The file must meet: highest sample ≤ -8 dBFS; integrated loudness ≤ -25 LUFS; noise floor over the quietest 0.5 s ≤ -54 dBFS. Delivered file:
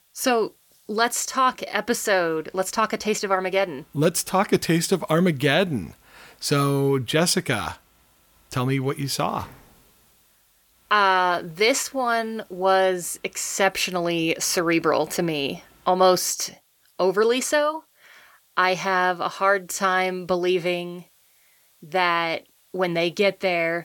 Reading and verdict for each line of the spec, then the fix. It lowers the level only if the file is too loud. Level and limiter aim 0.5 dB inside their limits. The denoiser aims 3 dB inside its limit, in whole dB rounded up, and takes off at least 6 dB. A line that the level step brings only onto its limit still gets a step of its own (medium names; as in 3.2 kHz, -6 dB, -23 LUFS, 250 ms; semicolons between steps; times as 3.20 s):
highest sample -5.5 dBFS: fail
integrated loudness -22.5 LUFS: fail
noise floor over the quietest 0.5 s -61 dBFS: pass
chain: trim -3 dB